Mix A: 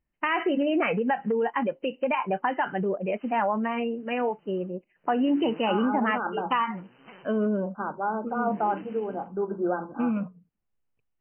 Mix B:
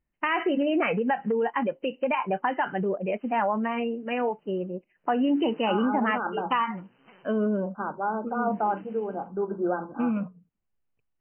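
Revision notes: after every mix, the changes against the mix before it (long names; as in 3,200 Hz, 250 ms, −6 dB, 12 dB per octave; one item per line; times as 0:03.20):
background −6.0 dB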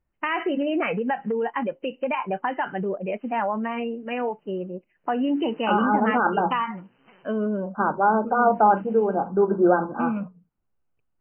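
second voice +9.0 dB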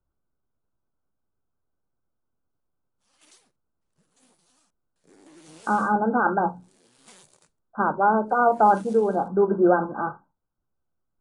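first voice: muted
master: remove linear-phase brick-wall low-pass 3,100 Hz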